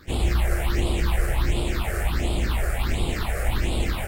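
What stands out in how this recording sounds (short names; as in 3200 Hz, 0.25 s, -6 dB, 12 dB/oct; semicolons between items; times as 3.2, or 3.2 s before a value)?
aliases and images of a low sample rate 6000 Hz, jitter 0%; phasing stages 6, 1.4 Hz, lowest notch 240–1700 Hz; AAC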